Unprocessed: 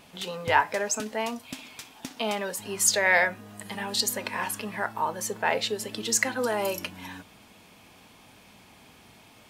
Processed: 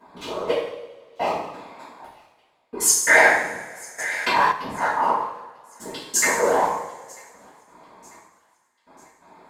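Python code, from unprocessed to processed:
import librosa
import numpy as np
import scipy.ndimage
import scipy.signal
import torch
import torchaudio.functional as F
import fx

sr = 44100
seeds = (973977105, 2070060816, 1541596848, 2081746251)

y = fx.wiener(x, sr, points=15)
y = scipy.signal.sosfilt(scipy.signal.butter(4, 250.0, 'highpass', fs=sr, output='sos'), y)
y = fx.peak_eq(y, sr, hz=1000.0, db=7.5, octaves=0.41)
y = y + 0.71 * np.pad(y, (int(6.0 * sr / 1000.0), 0))[:len(y)]
y = fx.whisperise(y, sr, seeds[0])
y = fx.step_gate(y, sr, bpm=88, pattern='xxx....x.', floor_db=-60.0, edge_ms=4.5)
y = fx.echo_wet_highpass(y, sr, ms=944, feedback_pct=48, hz=2100.0, wet_db=-23.5)
y = fx.rev_double_slope(y, sr, seeds[1], early_s=0.76, late_s=2.3, knee_db=-18, drr_db=-10.0)
y = fx.env_flatten(y, sr, amount_pct=50, at=(3.98, 4.51), fade=0.02)
y = y * 10.0 ** (-4.5 / 20.0)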